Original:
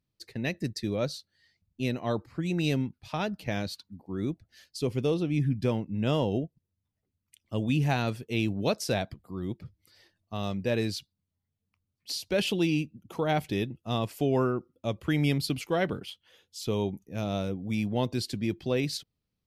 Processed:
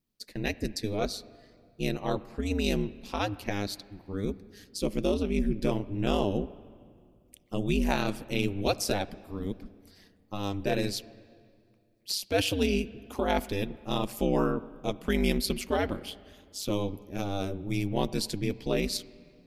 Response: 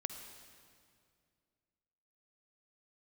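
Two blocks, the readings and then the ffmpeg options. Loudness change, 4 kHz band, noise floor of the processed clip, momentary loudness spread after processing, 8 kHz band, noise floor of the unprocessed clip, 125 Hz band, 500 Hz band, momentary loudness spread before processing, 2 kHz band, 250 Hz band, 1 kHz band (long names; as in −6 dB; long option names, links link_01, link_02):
−0.5 dB, +1.5 dB, −63 dBFS, 11 LU, +4.0 dB, −84 dBFS, −4.0 dB, 0.0 dB, 11 LU, 0.0 dB, −0.5 dB, +1.0 dB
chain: -filter_complex "[0:a]highshelf=frequency=3700:gain=9,aeval=exprs='val(0)*sin(2*PI*100*n/s)':channel_layout=same,asplit=2[link_01][link_02];[1:a]atrim=start_sample=2205,lowpass=2500[link_03];[link_02][link_03]afir=irnorm=-1:irlink=0,volume=-7.5dB[link_04];[link_01][link_04]amix=inputs=2:normalize=0"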